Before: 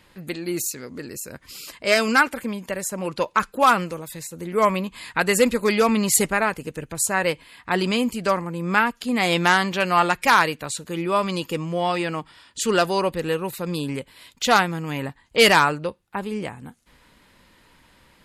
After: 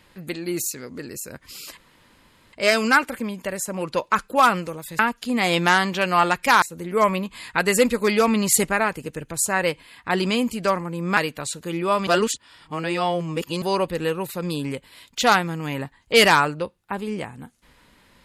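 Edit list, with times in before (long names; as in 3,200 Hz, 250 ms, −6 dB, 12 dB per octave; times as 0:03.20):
0:01.77: splice in room tone 0.76 s
0:08.78–0:10.41: move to 0:04.23
0:11.31–0:12.86: reverse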